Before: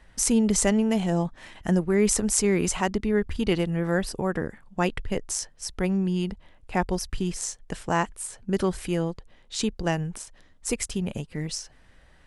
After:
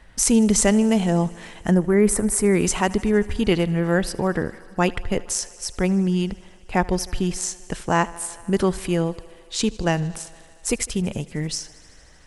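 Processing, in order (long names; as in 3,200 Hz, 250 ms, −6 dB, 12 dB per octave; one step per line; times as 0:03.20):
0:01.74–0:02.55: flat-topped bell 4,300 Hz −11.5 dB
on a send: feedback echo with a high-pass in the loop 77 ms, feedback 83%, high-pass 160 Hz, level −22 dB
on the sum: level +4.5 dB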